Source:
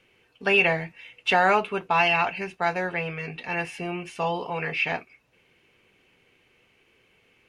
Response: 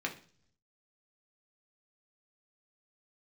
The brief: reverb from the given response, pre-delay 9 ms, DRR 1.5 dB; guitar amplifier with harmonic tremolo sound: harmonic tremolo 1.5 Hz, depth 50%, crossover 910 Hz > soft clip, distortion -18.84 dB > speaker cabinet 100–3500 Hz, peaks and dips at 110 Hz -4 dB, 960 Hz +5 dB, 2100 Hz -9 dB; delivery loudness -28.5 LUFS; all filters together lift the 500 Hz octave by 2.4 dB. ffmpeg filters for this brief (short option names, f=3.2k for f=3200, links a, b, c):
-filter_complex "[0:a]equalizer=f=500:t=o:g=3,asplit=2[a][b];[1:a]atrim=start_sample=2205,adelay=9[c];[b][c]afir=irnorm=-1:irlink=0,volume=-6dB[d];[a][d]amix=inputs=2:normalize=0,acrossover=split=910[e][f];[e]aeval=exprs='val(0)*(1-0.5/2+0.5/2*cos(2*PI*1.5*n/s))':c=same[g];[f]aeval=exprs='val(0)*(1-0.5/2-0.5/2*cos(2*PI*1.5*n/s))':c=same[h];[g][h]amix=inputs=2:normalize=0,asoftclip=threshold=-13.5dB,highpass=100,equalizer=f=110:t=q:w=4:g=-4,equalizer=f=960:t=q:w=4:g=5,equalizer=f=2.1k:t=q:w=4:g=-9,lowpass=f=3.5k:w=0.5412,lowpass=f=3.5k:w=1.3066,volume=-2dB"